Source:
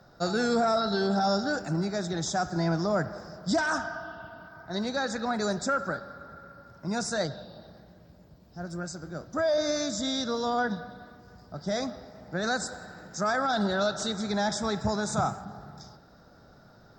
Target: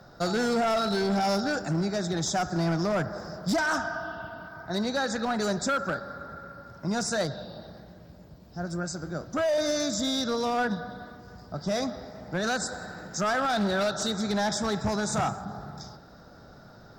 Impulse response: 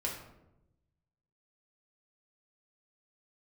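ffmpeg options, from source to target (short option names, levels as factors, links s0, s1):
-filter_complex "[0:a]asplit=2[s0][s1];[s1]acompressor=threshold=0.0178:ratio=6,volume=0.75[s2];[s0][s2]amix=inputs=2:normalize=0,asoftclip=type=hard:threshold=0.0794"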